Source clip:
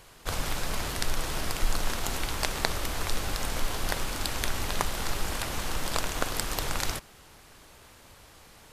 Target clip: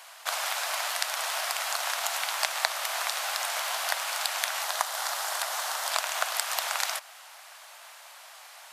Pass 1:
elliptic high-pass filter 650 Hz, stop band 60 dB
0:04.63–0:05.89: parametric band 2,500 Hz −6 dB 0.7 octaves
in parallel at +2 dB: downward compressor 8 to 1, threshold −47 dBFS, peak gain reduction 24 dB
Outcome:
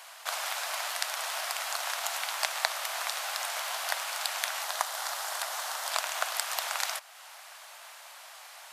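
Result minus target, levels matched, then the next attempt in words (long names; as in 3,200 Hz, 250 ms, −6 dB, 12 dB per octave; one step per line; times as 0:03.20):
downward compressor: peak gain reduction +10 dB
elliptic high-pass filter 650 Hz, stop band 60 dB
0:04.63–0:05.89: parametric band 2,500 Hz −6 dB 0.7 octaves
in parallel at +2 dB: downward compressor 8 to 1, threshold −35.5 dBFS, peak gain reduction 14 dB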